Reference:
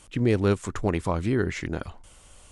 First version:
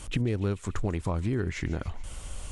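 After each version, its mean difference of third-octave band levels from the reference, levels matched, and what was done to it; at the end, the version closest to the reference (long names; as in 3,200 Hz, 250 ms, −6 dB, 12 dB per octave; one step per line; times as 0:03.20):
5.0 dB: low-shelf EQ 130 Hz +10 dB
downward compressor 4 to 1, threshold −35 dBFS, peak gain reduction 18 dB
delay with a high-pass on its return 144 ms, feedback 67%, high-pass 2,100 Hz, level −15 dB
level +7 dB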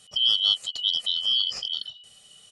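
14.5 dB: band-splitting scrambler in four parts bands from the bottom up 3412
low-shelf EQ 67 Hz −9.5 dB
comb filter 1.6 ms, depth 58%
level −2.5 dB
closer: first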